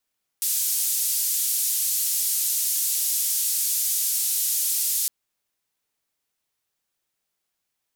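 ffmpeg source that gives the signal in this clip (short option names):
-f lavfi -i "anoisesrc=c=white:d=4.66:r=44100:seed=1,highpass=f=6200,lowpass=f=15000,volume=-15dB"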